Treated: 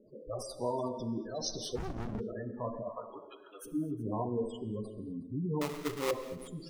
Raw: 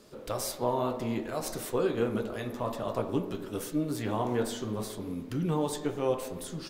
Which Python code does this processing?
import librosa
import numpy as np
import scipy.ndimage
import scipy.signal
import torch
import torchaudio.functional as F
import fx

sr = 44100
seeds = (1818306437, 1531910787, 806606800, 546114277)

y = fx.spec_box(x, sr, start_s=0.7, length_s=1.18, low_hz=2900.0, high_hz=6300.0, gain_db=12)
y = fx.highpass(y, sr, hz=850.0, slope=12, at=(2.88, 3.64), fade=0.02)
y = fx.spec_gate(y, sr, threshold_db=-10, keep='strong')
y = fx.sample_hold(y, sr, seeds[0], rate_hz=1600.0, jitter_pct=20, at=(5.61, 6.11))
y = y + 10.0 ** (-21.0 / 20.0) * np.pad(y, (int(367 * sr / 1000.0), 0))[:len(y)]
y = fx.rev_gated(y, sr, seeds[1], gate_ms=270, shape='flat', drr_db=11.5)
y = fx.running_max(y, sr, window=65, at=(1.75, 2.19), fade=0.02)
y = y * 10.0 ** (-3.5 / 20.0)